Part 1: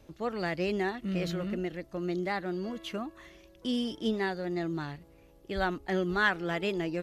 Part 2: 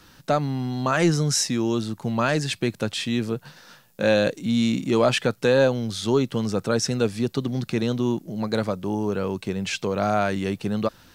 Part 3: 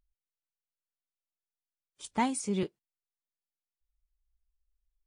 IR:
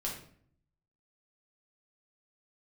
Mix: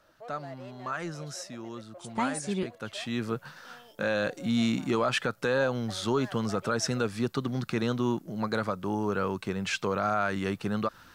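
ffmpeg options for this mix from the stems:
-filter_complex "[0:a]asoftclip=type=tanh:threshold=-31dB,highpass=frequency=620:width_type=q:width=4.9,volume=-14dB[link_01];[1:a]equalizer=frequency=1300:width_type=o:width=1:gain=10,volume=-5dB,afade=type=in:start_time=2.74:duration=0.63:silence=0.223872[link_02];[2:a]dynaudnorm=framelen=890:gausssize=5:maxgain=13dB,volume=-9.5dB[link_03];[link_01][link_02][link_03]amix=inputs=3:normalize=0,alimiter=limit=-16.5dB:level=0:latency=1:release=101"

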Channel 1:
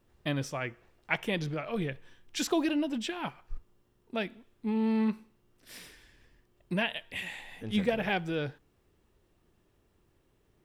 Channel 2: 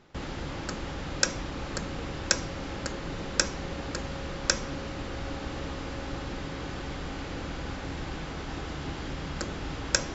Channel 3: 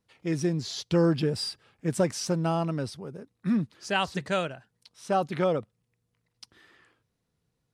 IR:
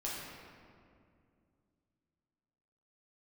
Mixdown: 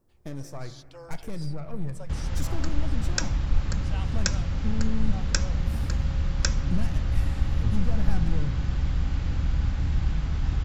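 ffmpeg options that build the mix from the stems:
-filter_complex "[0:a]aeval=exprs='(tanh(31.6*val(0)+0.6)-tanh(0.6))/31.6':channel_layout=same,equalizer=frequency=3000:width_type=o:width=0.96:gain=-13.5,volume=2dB,asplit=2[link_01][link_02];[link_02]volume=-16.5dB[link_03];[1:a]adelay=1950,volume=-3dB[link_04];[2:a]highpass=frequency=550:width=0.5412,highpass=frequency=550:width=1.3066,volume=-13dB[link_05];[link_01][link_05]amix=inputs=2:normalize=0,equalizer=frequency=1900:width_type=o:width=1.5:gain=-6,acompressor=threshold=-34dB:ratio=3,volume=0dB[link_06];[3:a]atrim=start_sample=2205[link_07];[link_03][link_07]afir=irnorm=-1:irlink=0[link_08];[link_04][link_06][link_08]amix=inputs=3:normalize=0,asubboost=boost=10.5:cutoff=120"

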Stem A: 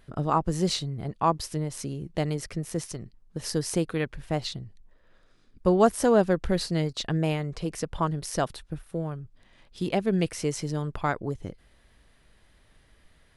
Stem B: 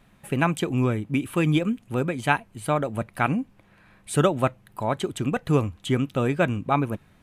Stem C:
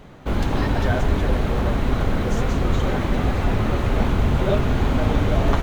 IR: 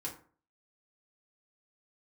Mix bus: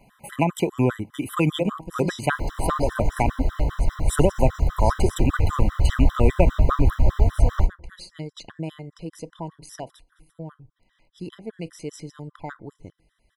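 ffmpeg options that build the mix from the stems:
-filter_complex "[0:a]alimiter=limit=-15.5dB:level=0:latency=1:release=298,adelay=1400,volume=-5.5dB,asplit=2[link_01][link_02];[link_02]volume=-14.5dB[link_03];[1:a]equalizer=frequency=880:width_type=o:width=2.1:gain=6.5,acrossover=split=330[link_04][link_05];[link_05]acompressor=threshold=-19dB:ratio=6[link_06];[link_04][link_06]amix=inputs=2:normalize=0,highshelf=frequency=8400:gain=6.5,volume=2dB[link_07];[2:a]equalizer=frequency=2600:width_type=o:width=0.9:gain=-7,acrossover=split=360|3000[link_08][link_09][link_10];[link_08]acompressor=threshold=-25dB:ratio=6[link_11];[link_11][link_09][link_10]amix=inputs=3:normalize=0,asubboost=boost=11.5:cutoff=98,adelay=2050,volume=-5.5dB,asplit=2[link_12][link_13];[link_13]volume=-7dB[link_14];[3:a]atrim=start_sample=2205[link_15];[link_03][link_14]amix=inputs=2:normalize=0[link_16];[link_16][link_15]afir=irnorm=-1:irlink=0[link_17];[link_01][link_07][link_12][link_17]amix=inputs=4:normalize=0,afftfilt=real='re*gt(sin(2*PI*5*pts/sr)*(1-2*mod(floor(b*sr/1024/1000),2)),0)':imag='im*gt(sin(2*PI*5*pts/sr)*(1-2*mod(floor(b*sr/1024/1000),2)),0)':win_size=1024:overlap=0.75"

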